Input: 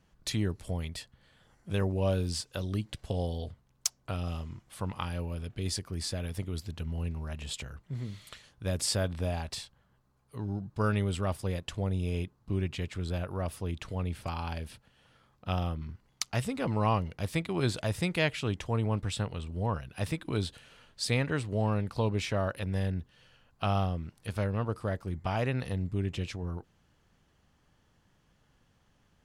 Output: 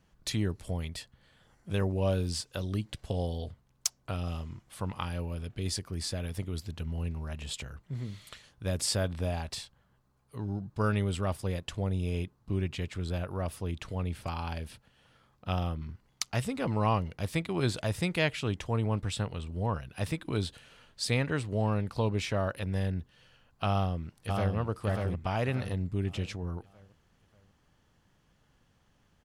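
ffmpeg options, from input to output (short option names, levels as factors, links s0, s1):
-filter_complex "[0:a]asplit=2[s0][s1];[s1]afade=t=in:st=23.7:d=0.01,afade=t=out:st=24.56:d=0.01,aecho=0:1:590|1180|1770|2360|2950:0.707946|0.283178|0.113271|0.0453085|0.0181234[s2];[s0][s2]amix=inputs=2:normalize=0"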